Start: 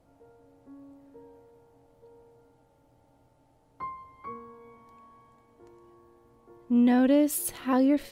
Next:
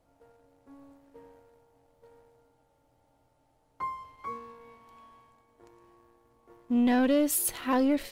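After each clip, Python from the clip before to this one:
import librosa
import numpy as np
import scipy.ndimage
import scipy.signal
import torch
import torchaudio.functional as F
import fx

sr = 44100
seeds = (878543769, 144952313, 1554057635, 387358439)

y = fx.low_shelf(x, sr, hz=350.0, db=-10.5)
y = fx.leveller(y, sr, passes=1)
y = fx.low_shelf(y, sr, hz=98.0, db=9.5)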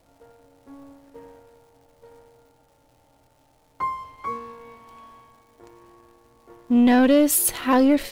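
y = fx.dmg_crackle(x, sr, seeds[0], per_s=320.0, level_db=-60.0)
y = F.gain(torch.from_numpy(y), 8.0).numpy()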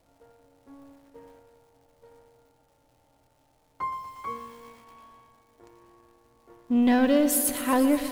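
y = fx.echo_crushed(x, sr, ms=119, feedback_pct=80, bits=7, wet_db=-13)
y = F.gain(torch.from_numpy(y), -5.0).numpy()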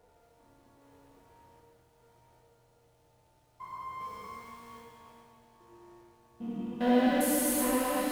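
y = fx.spec_steps(x, sr, hold_ms=400)
y = fx.notch_comb(y, sr, f0_hz=270.0)
y = fx.rev_plate(y, sr, seeds[1], rt60_s=1.7, hf_ratio=0.95, predelay_ms=0, drr_db=-2.5)
y = F.gain(torch.from_numpy(y), -3.0).numpy()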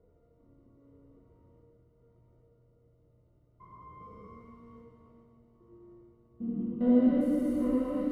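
y = np.convolve(x, np.full(53, 1.0 / 53))[:len(x)]
y = F.gain(torch.from_numpy(y), 4.5).numpy()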